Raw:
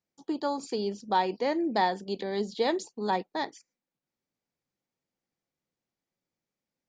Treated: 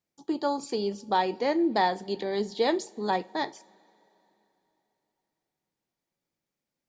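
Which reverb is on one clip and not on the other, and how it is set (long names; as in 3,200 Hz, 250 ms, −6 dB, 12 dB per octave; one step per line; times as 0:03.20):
coupled-rooms reverb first 0.31 s, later 3.4 s, from −22 dB, DRR 13.5 dB
level +1.5 dB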